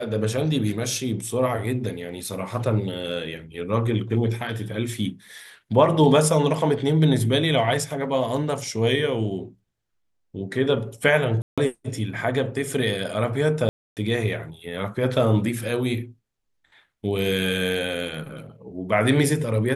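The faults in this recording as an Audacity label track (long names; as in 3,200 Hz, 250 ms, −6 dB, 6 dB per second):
11.420000	11.580000	drop-out 156 ms
13.690000	13.970000	drop-out 278 ms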